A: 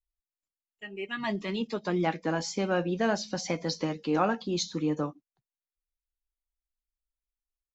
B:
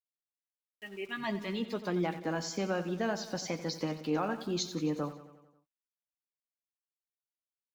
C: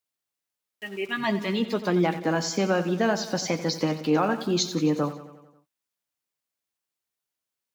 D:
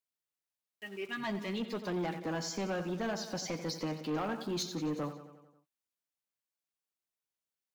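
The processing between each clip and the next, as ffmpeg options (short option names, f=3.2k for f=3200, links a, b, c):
-filter_complex "[0:a]alimiter=limit=-18.5dB:level=0:latency=1:release=216,aeval=exprs='val(0)*gte(abs(val(0)),0.00316)':c=same,asplit=2[a][b];[b]aecho=0:1:90|180|270|360|450|540:0.211|0.127|0.0761|0.0457|0.0274|0.0164[c];[a][c]amix=inputs=2:normalize=0,volume=-3.5dB"
-af "highpass=62,volume=9dB"
-af "asoftclip=type=tanh:threshold=-21.5dB,volume=-8dB"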